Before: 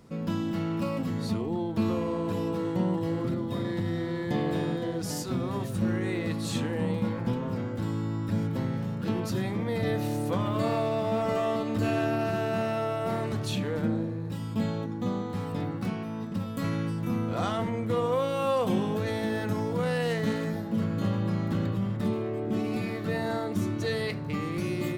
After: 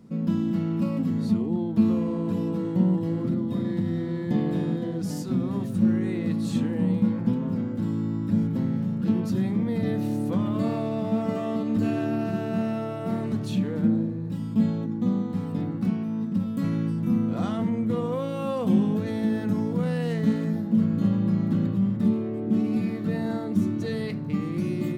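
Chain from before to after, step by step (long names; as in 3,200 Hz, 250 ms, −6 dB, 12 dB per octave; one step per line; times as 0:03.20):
parametric band 210 Hz +14 dB 1.3 octaves
level −5.5 dB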